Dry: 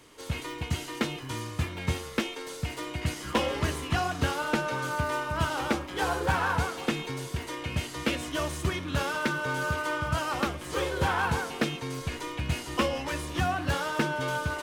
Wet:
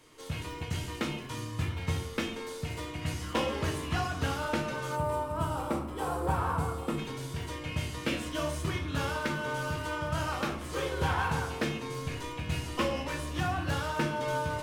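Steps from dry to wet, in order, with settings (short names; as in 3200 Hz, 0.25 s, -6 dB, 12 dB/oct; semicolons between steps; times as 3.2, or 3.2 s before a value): reverb RT60 0.60 s, pre-delay 6 ms, DRR 3 dB; spectral gain 4.96–6.98, 1400–7300 Hz -9 dB; gain -5 dB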